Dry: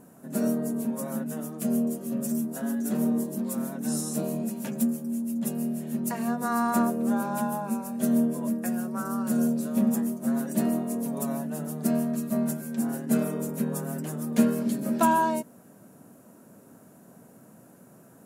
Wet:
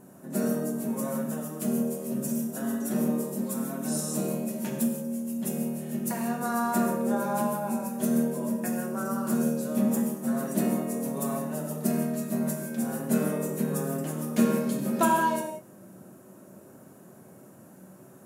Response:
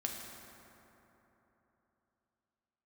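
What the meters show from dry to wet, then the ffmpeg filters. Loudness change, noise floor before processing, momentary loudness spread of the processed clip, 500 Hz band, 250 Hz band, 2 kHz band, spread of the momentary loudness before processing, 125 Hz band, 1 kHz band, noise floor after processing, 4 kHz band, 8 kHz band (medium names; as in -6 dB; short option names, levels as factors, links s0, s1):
-1.0 dB, -53 dBFS, 6 LU, +1.5 dB, -1.5 dB, +1.5 dB, 7 LU, +1.0 dB, -0.5 dB, -51 dBFS, no reading, +1.0 dB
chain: -filter_complex "[1:a]atrim=start_sample=2205,afade=t=out:st=0.36:d=0.01,atrim=end_sample=16317,asetrate=70560,aresample=44100[s0];[0:a][s0]afir=irnorm=-1:irlink=0,volume=1.78"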